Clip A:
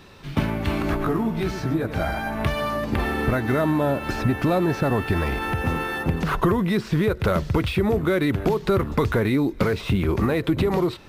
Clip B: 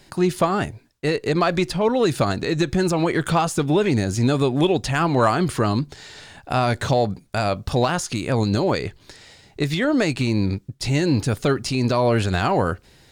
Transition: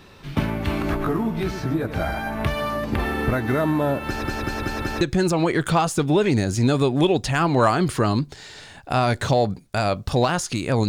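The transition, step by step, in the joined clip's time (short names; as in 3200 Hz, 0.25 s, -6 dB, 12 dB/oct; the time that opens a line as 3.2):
clip A
4.06 stutter in place 0.19 s, 5 plays
5.01 switch to clip B from 2.61 s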